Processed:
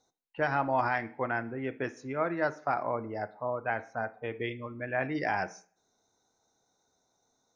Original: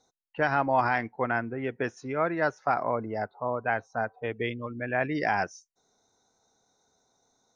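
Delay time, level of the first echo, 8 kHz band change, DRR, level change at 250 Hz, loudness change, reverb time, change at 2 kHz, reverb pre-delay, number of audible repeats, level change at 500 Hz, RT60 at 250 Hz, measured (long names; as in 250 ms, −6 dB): no echo audible, no echo audible, can't be measured, 10.5 dB, −3.0 dB, −3.5 dB, 0.45 s, −3.5 dB, 3 ms, no echo audible, −3.0 dB, 0.50 s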